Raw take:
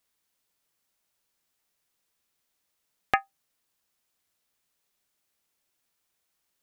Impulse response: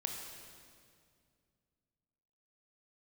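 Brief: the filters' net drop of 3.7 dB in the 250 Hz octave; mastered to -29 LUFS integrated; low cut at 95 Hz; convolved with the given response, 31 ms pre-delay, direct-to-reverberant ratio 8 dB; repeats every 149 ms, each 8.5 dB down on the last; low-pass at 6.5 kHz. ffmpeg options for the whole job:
-filter_complex "[0:a]highpass=95,lowpass=6500,equalizer=f=250:t=o:g=-5,aecho=1:1:149|298|447|596:0.376|0.143|0.0543|0.0206,asplit=2[s0][s1];[1:a]atrim=start_sample=2205,adelay=31[s2];[s1][s2]afir=irnorm=-1:irlink=0,volume=0.376[s3];[s0][s3]amix=inputs=2:normalize=0,volume=1.26"

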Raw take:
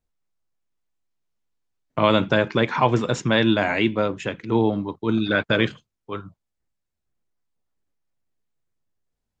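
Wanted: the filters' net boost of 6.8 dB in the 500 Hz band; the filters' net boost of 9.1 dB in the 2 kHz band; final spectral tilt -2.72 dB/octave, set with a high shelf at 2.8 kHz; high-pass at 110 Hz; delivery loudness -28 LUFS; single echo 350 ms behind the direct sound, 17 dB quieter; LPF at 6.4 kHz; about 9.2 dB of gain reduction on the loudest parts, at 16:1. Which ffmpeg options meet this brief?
-af "highpass=110,lowpass=6400,equalizer=f=500:t=o:g=7.5,equalizer=f=2000:t=o:g=8.5,highshelf=f=2800:g=8.5,acompressor=threshold=0.158:ratio=16,aecho=1:1:350:0.141,volume=0.531"

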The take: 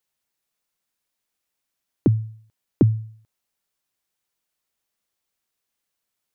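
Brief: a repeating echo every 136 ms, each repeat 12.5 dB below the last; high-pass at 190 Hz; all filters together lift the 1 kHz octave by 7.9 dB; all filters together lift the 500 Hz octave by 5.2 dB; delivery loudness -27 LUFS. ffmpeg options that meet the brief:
-af "highpass=190,equalizer=f=500:t=o:g=6.5,equalizer=f=1000:t=o:g=8,aecho=1:1:136|272|408:0.237|0.0569|0.0137,volume=0.794"

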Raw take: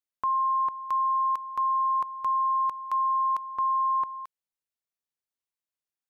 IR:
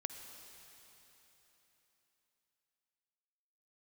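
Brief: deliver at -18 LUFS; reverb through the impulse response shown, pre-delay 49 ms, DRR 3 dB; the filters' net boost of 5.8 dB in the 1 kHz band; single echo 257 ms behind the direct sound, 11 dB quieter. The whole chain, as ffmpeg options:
-filter_complex "[0:a]equalizer=f=1000:t=o:g=6,aecho=1:1:257:0.282,asplit=2[s0][s1];[1:a]atrim=start_sample=2205,adelay=49[s2];[s1][s2]afir=irnorm=-1:irlink=0,volume=0.841[s3];[s0][s3]amix=inputs=2:normalize=0,volume=0.891"

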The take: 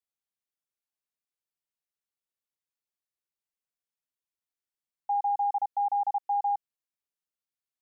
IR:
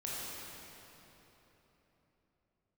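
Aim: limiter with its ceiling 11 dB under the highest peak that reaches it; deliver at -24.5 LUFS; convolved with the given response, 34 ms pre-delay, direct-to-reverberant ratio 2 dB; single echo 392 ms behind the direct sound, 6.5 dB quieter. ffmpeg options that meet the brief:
-filter_complex "[0:a]alimiter=level_in=3.16:limit=0.0631:level=0:latency=1,volume=0.316,aecho=1:1:392:0.473,asplit=2[s0][s1];[1:a]atrim=start_sample=2205,adelay=34[s2];[s1][s2]afir=irnorm=-1:irlink=0,volume=0.562[s3];[s0][s3]amix=inputs=2:normalize=0,volume=6.31"

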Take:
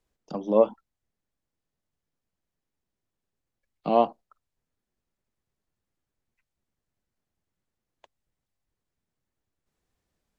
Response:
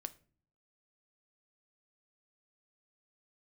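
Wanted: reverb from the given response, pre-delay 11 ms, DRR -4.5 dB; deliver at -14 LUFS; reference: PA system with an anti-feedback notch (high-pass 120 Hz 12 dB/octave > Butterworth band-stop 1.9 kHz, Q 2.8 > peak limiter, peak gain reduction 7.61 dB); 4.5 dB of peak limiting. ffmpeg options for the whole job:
-filter_complex "[0:a]alimiter=limit=0.282:level=0:latency=1,asplit=2[s0][s1];[1:a]atrim=start_sample=2205,adelay=11[s2];[s1][s2]afir=irnorm=-1:irlink=0,volume=2.51[s3];[s0][s3]amix=inputs=2:normalize=0,highpass=120,asuperstop=centerf=1900:order=8:qfactor=2.8,volume=3.55,alimiter=limit=1:level=0:latency=1"

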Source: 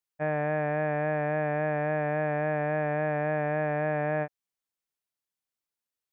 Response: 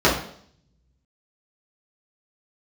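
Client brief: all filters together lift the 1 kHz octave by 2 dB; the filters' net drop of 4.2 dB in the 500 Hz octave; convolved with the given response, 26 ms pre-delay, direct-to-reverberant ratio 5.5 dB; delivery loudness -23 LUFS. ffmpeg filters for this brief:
-filter_complex "[0:a]equalizer=f=500:t=o:g=-8.5,equalizer=f=1000:t=o:g=7.5,asplit=2[s0][s1];[1:a]atrim=start_sample=2205,adelay=26[s2];[s1][s2]afir=irnorm=-1:irlink=0,volume=0.0422[s3];[s0][s3]amix=inputs=2:normalize=0,volume=1.88"

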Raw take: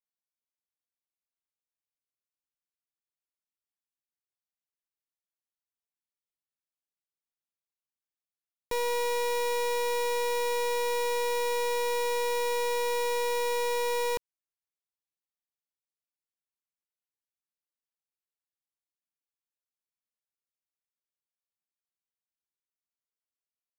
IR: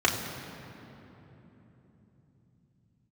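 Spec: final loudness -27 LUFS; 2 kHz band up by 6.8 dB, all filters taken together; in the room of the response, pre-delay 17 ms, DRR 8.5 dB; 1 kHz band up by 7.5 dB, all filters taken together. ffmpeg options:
-filter_complex "[0:a]equalizer=f=1000:t=o:g=6.5,equalizer=f=2000:t=o:g=6.5,asplit=2[s0][s1];[1:a]atrim=start_sample=2205,adelay=17[s2];[s1][s2]afir=irnorm=-1:irlink=0,volume=0.0708[s3];[s0][s3]amix=inputs=2:normalize=0,volume=0.794"

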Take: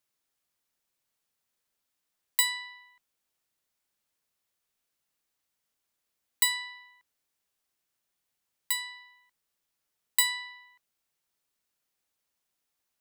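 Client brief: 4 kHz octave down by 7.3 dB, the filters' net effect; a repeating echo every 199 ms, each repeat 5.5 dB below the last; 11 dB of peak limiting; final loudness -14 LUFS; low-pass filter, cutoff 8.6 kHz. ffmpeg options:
-af "lowpass=8600,equalizer=f=4000:t=o:g=-8,alimiter=level_in=1.41:limit=0.0631:level=0:latency=1,volume=0.708,aecho=1:1:199|398|597|796|995|1194|1393:0.531|0.281|0.149|0.079|0.0419|0.0222|0.0118,volume=18.8"

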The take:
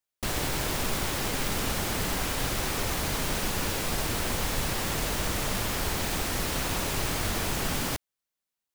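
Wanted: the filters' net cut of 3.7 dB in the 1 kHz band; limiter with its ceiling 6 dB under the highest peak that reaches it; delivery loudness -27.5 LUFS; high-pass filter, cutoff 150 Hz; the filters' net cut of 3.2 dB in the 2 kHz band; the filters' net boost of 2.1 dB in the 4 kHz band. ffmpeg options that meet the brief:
-af "highpass=150,equalizer=f=1000:t=o:g=-4,equalizer=f=2000:t=o:g=-4,equalizer=f=4000:t=o:g=4,volume=1.58,alimiter=limit=0.106:level=0:latency=1"

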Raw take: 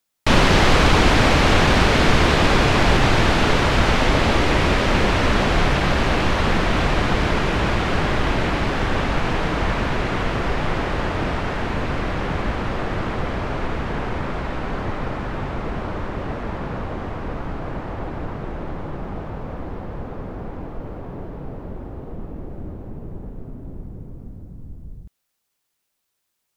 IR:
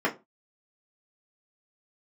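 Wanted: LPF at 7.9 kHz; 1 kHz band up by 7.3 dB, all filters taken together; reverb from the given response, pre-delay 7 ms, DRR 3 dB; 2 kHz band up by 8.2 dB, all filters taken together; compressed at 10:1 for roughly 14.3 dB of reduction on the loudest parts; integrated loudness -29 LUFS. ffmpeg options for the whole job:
-filter_complex "[0:a]lowpass=7900,equalizer=f=1000:t=o:g=7,equalizer=f=2000:t=o:g=8,acompressor=threshold=0.0794:ratio=10,asplit=2[s0][s1];[1:a]atrim=start_sample=2205,adelay=7[s2];[s1][s2]afir=irnorm=-1:irlink=0,volume=0.168[s3];[s0][s3]amix=inputs=2:normalize=0,volume=0.631"

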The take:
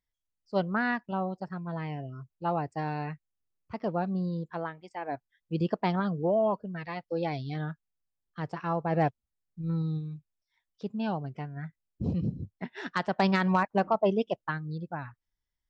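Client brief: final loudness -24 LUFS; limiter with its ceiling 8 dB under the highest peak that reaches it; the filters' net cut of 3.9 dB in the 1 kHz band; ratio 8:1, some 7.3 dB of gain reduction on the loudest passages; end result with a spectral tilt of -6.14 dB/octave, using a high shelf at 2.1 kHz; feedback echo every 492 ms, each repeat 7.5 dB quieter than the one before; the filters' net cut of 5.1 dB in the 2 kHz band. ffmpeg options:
-af "equalizer=f=1000:t=o:g=-4,equalizer=f=2000:t=o:g=-3,highshelf=f=2100:g=-4,acompressor=threshold=0.0316:ratio=8,alimiter=level_in=1.58:limit=0.0631:level=0:latency=1,volume=0.631,aecho=1:1:492|984|1476|1968|2460:0.422|0.177|0.0744|0.0312|0.0131,volume=5.01"

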